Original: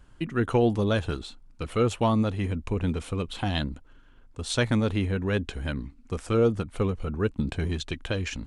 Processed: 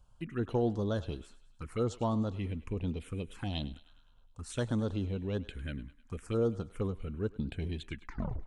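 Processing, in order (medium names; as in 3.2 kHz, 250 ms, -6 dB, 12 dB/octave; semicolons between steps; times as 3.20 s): tape stop on the ending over 0.58 s; touch-sensitive phaser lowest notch 300 Hz, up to 2.4 kHz, full sweep at -21 dBFS; thinning echo 103 ms, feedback 57%, high-pass 740 Hz, level -16 dB; trim -7.5 dB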